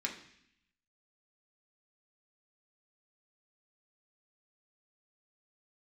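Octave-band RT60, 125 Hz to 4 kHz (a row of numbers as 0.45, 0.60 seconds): 1.0, 0.95, 0.65, 0.70, 0.90, 0.85 seconds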